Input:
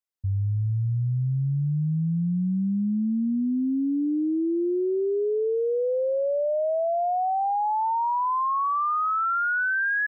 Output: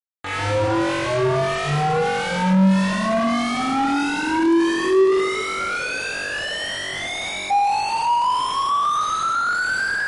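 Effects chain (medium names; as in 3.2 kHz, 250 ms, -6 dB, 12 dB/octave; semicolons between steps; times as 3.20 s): in parallel at -11.5 dB: Schmitt trigger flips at -49 dBFS; 4.61–5.15 s: on the sum: dynamic bell 1.6 kHz, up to -5 dB, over -49 dBFS, Q 1.7; bit crusher 4-bit; harmonic tremolo 1.6 Hz, depth 100%, crossover 1.4 kHz; on a send: flutter echo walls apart 3.6 m, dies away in 1.2 s; 5.42–7.51 s: on the sum: spectral selection erased 390–1100 Hz; overdrive pedal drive 32 dB, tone 1 kHz, clips at -11.5 dBFS; MP3 48 kbps 32 kHz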